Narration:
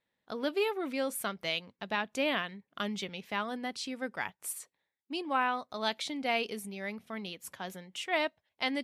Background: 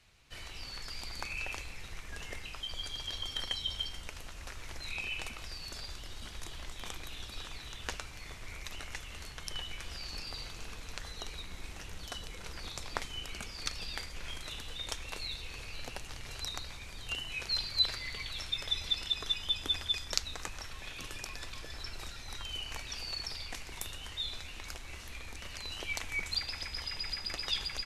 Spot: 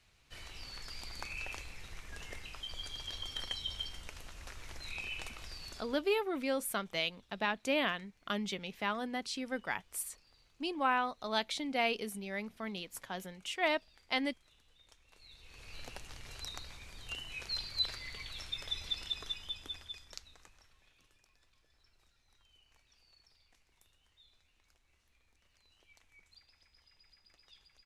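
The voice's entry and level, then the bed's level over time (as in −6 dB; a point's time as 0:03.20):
5.50 s, −1.0 dB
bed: 0:05.69 −3.5 dB
0:06.25 −25 dB
0:15.04 −25 dB
0:15.76 −5 dB
0:19.13 −5 dB
0:21.23 −28 dB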